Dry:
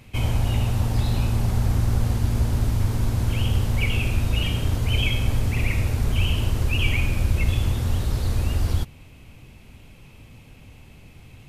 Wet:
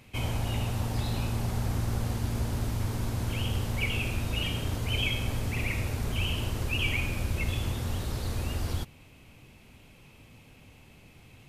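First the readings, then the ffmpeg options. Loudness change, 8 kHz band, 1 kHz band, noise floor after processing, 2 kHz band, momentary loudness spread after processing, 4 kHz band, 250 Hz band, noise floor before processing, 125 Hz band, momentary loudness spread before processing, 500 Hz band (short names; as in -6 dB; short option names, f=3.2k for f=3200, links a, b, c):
-7.5 dB, -3.5 dB, -3.5 dB, -55 dBFS, -3.5 dB, 4 LU, -3.5 dB, -5.5 dB, -48 dBFS, -8.5 dB, 2 LU, -4.0 dB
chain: -af "lowshelf=f=120:g=-8.5,volume=-3.5dB"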